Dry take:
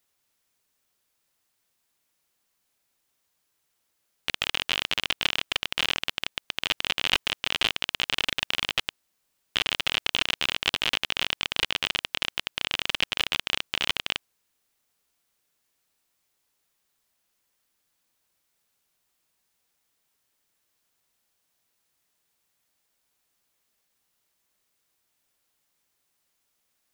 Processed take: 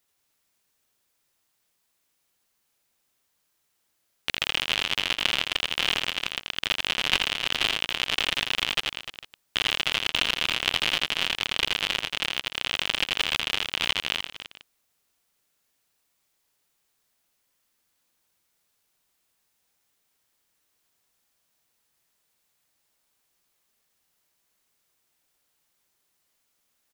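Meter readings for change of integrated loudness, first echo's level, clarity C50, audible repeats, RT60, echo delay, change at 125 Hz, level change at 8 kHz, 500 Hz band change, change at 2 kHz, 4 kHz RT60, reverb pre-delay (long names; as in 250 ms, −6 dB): +1.5 dB, −4.5 dB, no reverb audible, 3, no reverb audible, 83 ms, +1.5 dB, +1.5 dB, +1.5 dB, +1.5 dB, no reverb audible, no reverb audible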